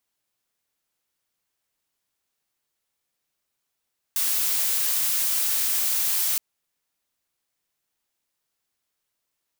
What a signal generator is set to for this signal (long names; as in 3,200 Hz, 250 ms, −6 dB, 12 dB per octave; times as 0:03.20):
noise blue, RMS −23.5 dBFS 2.22 s